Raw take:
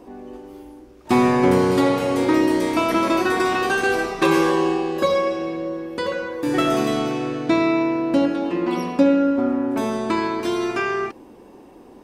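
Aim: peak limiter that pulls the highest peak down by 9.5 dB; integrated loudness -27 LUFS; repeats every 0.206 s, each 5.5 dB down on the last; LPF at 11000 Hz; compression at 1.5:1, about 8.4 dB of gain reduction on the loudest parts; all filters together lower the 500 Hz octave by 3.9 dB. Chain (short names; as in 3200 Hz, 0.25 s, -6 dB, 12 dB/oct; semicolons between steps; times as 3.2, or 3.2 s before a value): LPF 11000 Hz; bell 500 Hz -5.5 dB; compressor 1.5:1, threshold -38 dBFS; limiter -24.5 dBFS; feedback echo 0.206 s, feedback 53%, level -5.5 dB; gain +5 dB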